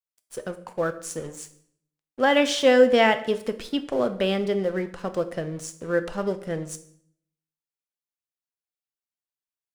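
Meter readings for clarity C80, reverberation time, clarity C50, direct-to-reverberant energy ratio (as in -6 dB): 17.0 dB, 0.65 s, 14.0 dB, 8.5 dB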